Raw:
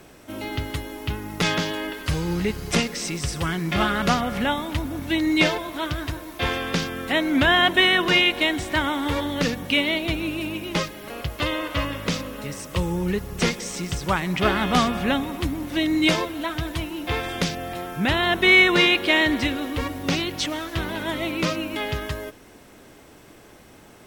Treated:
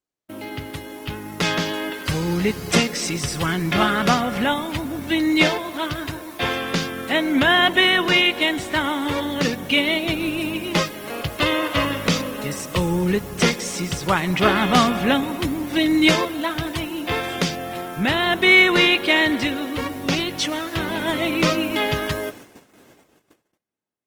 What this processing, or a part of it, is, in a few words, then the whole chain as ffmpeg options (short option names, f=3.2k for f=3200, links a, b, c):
video call: -af "highpass=110,dynaudnorm=f=700:g=5:m=11dB,agate=range=-43dB:threshold=-39dB:ratio=16:detection=peak,volume=-1dB" -ar 48000 -c:a libopus -b:a 24k